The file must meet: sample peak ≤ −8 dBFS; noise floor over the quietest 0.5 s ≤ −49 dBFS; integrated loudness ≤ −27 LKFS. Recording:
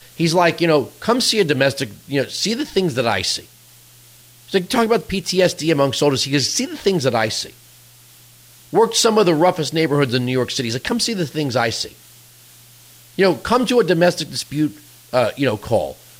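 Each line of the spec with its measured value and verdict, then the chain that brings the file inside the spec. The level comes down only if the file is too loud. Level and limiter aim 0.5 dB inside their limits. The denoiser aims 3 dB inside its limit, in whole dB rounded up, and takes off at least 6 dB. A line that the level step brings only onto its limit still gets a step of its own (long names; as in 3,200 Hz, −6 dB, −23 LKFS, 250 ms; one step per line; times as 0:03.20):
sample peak −4.5 dBFS: out of spec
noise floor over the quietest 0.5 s −47 dBFS: out of spec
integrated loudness −18.0 LKFS: out of spec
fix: level −9.5 dB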